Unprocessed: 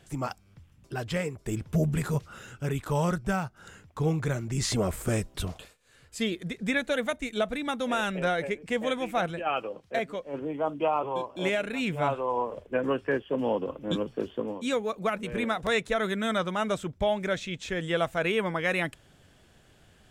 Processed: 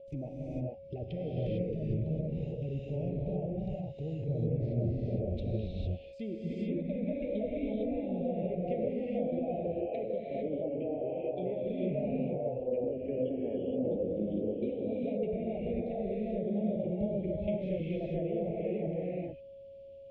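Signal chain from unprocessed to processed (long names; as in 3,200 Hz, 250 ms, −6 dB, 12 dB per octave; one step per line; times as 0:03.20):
output level in coarse steps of 18 dB
treble cut that deepens with the level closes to 990 Hz, closed at −33 dBFS
steady tone 550 Hz −46 dBFS
elliptic band-stop filter 660–2,400 Hz, stop band 50 dB
high-frequency loss of the air 260 metres
reverb whose tail is shaped and stops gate 480 ms rising, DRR −5 dB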